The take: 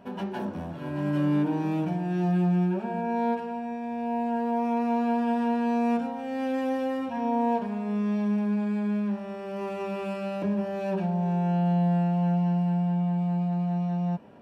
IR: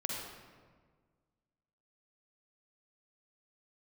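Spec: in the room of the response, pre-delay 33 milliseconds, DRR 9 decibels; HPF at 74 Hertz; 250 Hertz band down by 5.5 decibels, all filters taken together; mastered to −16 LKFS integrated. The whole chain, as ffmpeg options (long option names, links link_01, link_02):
-filter_complex "[0:a]highpass=74,equalizer=frequency=250:width_type=o:gain=-8,asplit=2[link_01][link_02];[1:a]atrim=start_sample=2205,adelay=33[link_03];[link_02][link_03]afir=irnorm=-1:irlink=0,volume=-12dB[link_04];[link_01][link_04]amix=inputs=2:normalize=0,volume=14dB"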